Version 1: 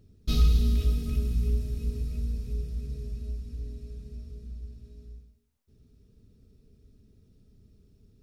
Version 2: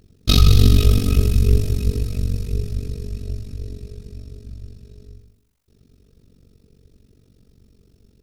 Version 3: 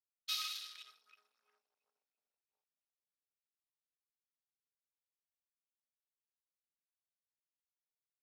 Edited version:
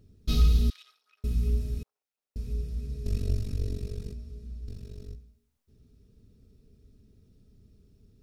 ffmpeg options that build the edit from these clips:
-filter_complex "[2:a]asplit=2[s0][s1];[1:a]asplit=2[s2][s3];[0:a]asplit=5[s4][s5][s6][s7][s8];[s4]atrim=end=0.702[s9];[s0]atrim=start=0.698:end=1.242[s10];[s5]atrim=start=1.238:end=1.832[s11];[s1]atrim=start=1.828:end=2.362[s12];[s6]atrim=start=2.358:end=3.062[s13];[s2]atrim=start=3.058:end=4.132[s14];[s7]atrim=start=4.128:end=4.682[s15];[s3]atrim=start=4.678:end=5.152[s16];[s8]atrim=start=5.148[s17];[s9][s10]acrossfade=d=0.004:c1=hsin:c2=hsin[s18];[s18][s11]acrossfade=d=0.004:c1=hsin:c2=hsin[s19];[s19][s12]acrossfade=d=0.004:c1=hsin:c2=hsin[s20];[s20][s13]acrossfade=d=0.004:c1=hsin:c2=hsin[s21];[s21][s14]acrossfade=d=0.004:c1=hsin:c2=hsin[s22];[s22][s15]acrossfade=d=0.004:c1=hsin:c2=hsin[s23];[s23][s16]acrossfade=d=0.004:c1=hsin:c2=hsin[s24];[s24][s17]acrossfade=d=0.004:c1=hsin:c2=hsin"

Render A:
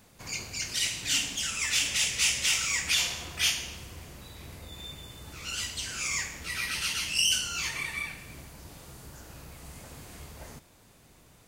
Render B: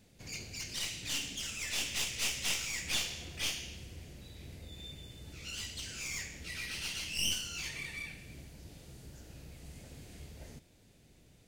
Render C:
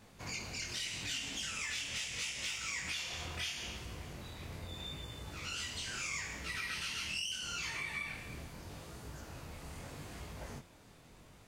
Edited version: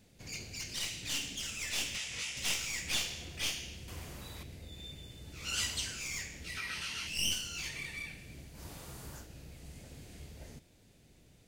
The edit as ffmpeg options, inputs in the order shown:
-filter_complex "[2:a]asplit=2[s0][s1];[0:a]asplit=3[s2][s3][s4];[1:a]asplit=6[s5][s6][s7][s8][s9][s10];[s5]atrim=end=1.962[s11];[s0]atrim=start=1.958:end=2.372[s12];[s6]atrim=start=2.368:end=3.882[s13];[s2]atrim=start=3.878:end=4.432[s14];[s7]atrim=start=4.428:end=5.57[s15];[s3]atrim=start=5.33:end=5.99[s16];[s8]atrim=start=5.75:end=6.572[s17];[s1]atrim=start=6.568:end=7.072[s18];[s9]atrim=start=7.068:end=8.63[s19];[s4]atrim=start=8.53:end=9.27[s20];[s10]atrim=start=9.17[s21];[s11][s12]acrossfade=d=0.004:c1=hsin:c2=hsin[s22];[s22][s13]acrossfade=d=0.004:c1=hsin:c2=hsin[s23];[s23][s14]acrossfade=d=0.004:c1=hsin:c2=hsin[s24];[s24][s15]acrossfade=d=0.004:c1=hsin:c2=hsin[s25];[s25][s16]acrossfade=d=0.24:c1=tri:c2=tri[s26];[s26][s17]acrossfade=d=0.24:c1=tri:c2=tri[s27];[s27][s18]acrossfade=d=0.004:c1=hsin:c2=hsin[s28];[s28][s19]acrossfade=d=0.004:c1=hsin:c2=hsin[s29];[s29][s20]acrossfade=d=0.1:c1=tri:c2=tri[s30];[s30][s21]acrossfade=d=0.1:c1=tri:c2=tri"

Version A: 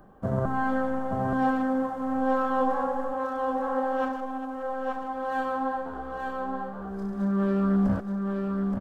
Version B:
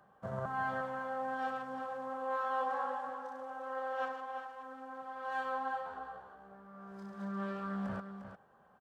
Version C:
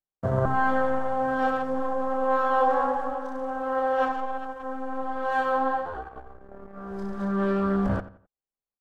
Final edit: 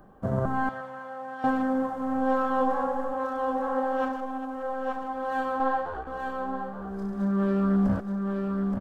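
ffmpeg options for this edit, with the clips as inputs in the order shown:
-filter_complex "[0:a]asplit=3[s0][s1][s2];[s0]atrim=end=0.692[s3];[1:a]atrim=start=0.688:end=1.442[s4];[s1]atrim=start=1.438:end=5.602[s5];[2:a]atrim=start=5.598:end=6.072[s6];[s2]atrim=start=6.068[s7];[s3][s4]acrossfade=d=0.004:c1=hsin:c2=hsin[s8];[s8][s5]acrossfade=d=0.004:c1=hsin:c2=hsin[s9];[s9][s6]acrossfade=d=0.004:c1=hsin:c2=hsin[s10];[s10][s7]acrossfade=d=0.004:c1=hsin:c2=hsin"

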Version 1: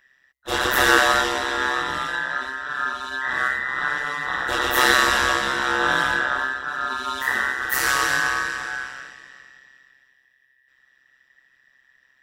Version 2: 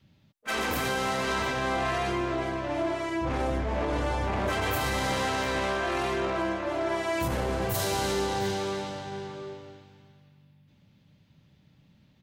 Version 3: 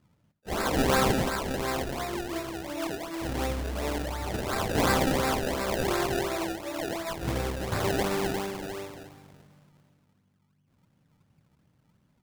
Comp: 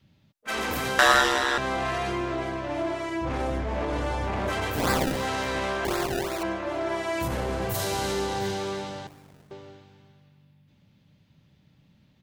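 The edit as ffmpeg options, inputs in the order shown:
-filter_complex "[2:a]asplit=3[s0][s1][s2];[1:a]asplit=5[s3][s4][s5][s6][s7];[s3]atrim=end=0.992[s8];[0:a]atrim=start=0.988:end=1.582[s9];[s4]atrim=start=1.578:end=4.88[s10];[s0]atrim=start=4.64:end=5.29[s11];[s5]atrim=start=5.05:end=5.852[s12];[s1]atrim=start=5.848:end=6.432[s13];[s6]atrim=start=6.428:end=9.072[s14];[s2]atrim=start=9.068:end=9.512[s15];[s7]atrim=start=9.508[s16];[s8][s9]acrossfade=d=0.004:c1=hsin:c2=hsin[s17];[s17][s10]acrossfade=d=0.004:c1=hsin:c2=hsin[s18];[s18][s11]acrossfade=d=0.24:c1=tri:c2=tri[s19];[s19][s12]acrossfade=d=0.24:c1=tri:c2=tri[s20];[s20][s13]acrossfade=d=0.004:c1=hsin:c2=hsin[s21];[s21][s14]acrossfade=d=0.004:c1=hsin:c2=hsin[s22];[s22][s15]acrossfade=d=0.004:c1=hsin:c2=hsin[s23];[s23][s16]acrossfade=d=0.004:c1=hsin:c2=hsin"

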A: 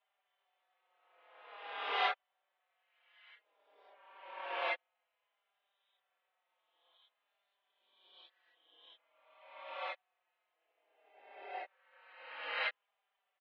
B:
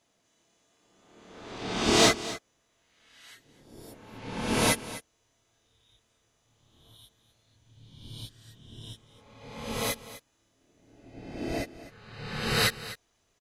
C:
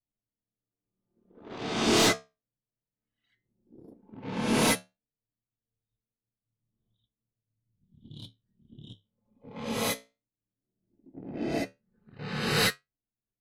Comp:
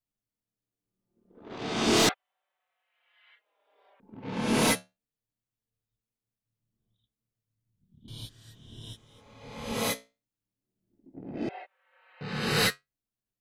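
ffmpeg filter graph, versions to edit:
-filter_complex "[0:a]asplit=2[s0][s1];[2:a]asplit=4[s2][s3][s4][s5];[s2]atrim=end=2.092[s6];[s0]atrim=start=2.088:end=4.002[s7];[s3]atrim=start=3.998:end=8.082[s8];[1:a]atrim=start=8.078:end=9.722[s9];[s4]atrim=start=9.718:end=11.492[s10];[s1]atrim=start=11.488:end=12.212[s11];[s5]atrim=start=12.208[s12];[s6][s7]acrossfade=d=0.004:c1=hsin:c2=hsin[s13];[s13][s8]acrossfade=d=0.004:c1=hsin:c2=hsin[s14];[s14][s9]acrossfade=d=0.004:c1=hsin:c2=hsin[s15];[s15][s10]acrossfade=d=0.004:c1=hsin:c2=hsin[s16];[s16][s11]acrossfade=d=0.004:c1=hsin:c2=hsin[s17];[s17][s12]acrossfade=d=0.004:c1=hsin:c2=hsin"

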